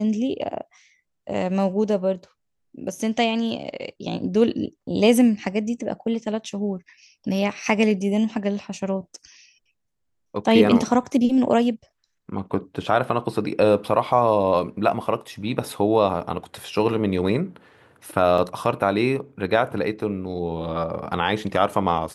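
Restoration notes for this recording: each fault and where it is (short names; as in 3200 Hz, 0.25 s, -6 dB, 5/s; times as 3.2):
18.38 gap 3.1 ms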